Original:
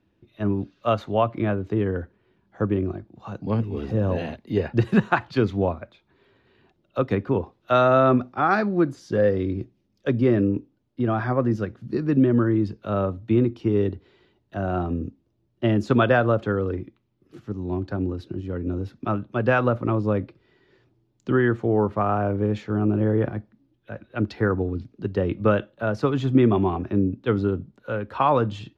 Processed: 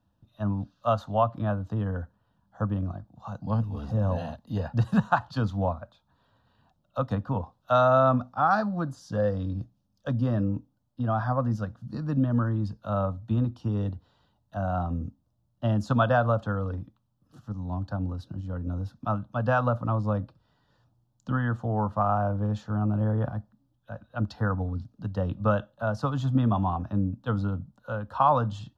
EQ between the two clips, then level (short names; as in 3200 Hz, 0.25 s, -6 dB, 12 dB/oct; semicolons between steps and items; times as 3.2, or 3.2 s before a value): fixed phaser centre 910 Hz, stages 4; 0.0 dB